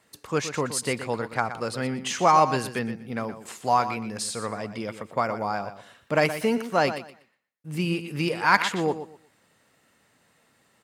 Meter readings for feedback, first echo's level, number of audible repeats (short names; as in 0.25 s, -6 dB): 22%, -11.5 dB, 2